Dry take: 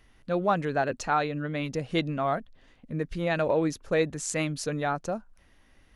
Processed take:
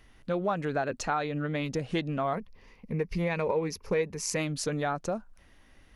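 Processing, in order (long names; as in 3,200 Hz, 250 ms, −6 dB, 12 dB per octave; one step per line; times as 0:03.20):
0:02.33–0:04.36: EQ curve with evenly spaced ripples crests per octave 0.84, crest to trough 11 dB
downward compressor 3 to 1, threshold −29 dBFS, peak gain reduction 10 dB
highs frequency-modulated by the lows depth 0.12 ms
level +2 dB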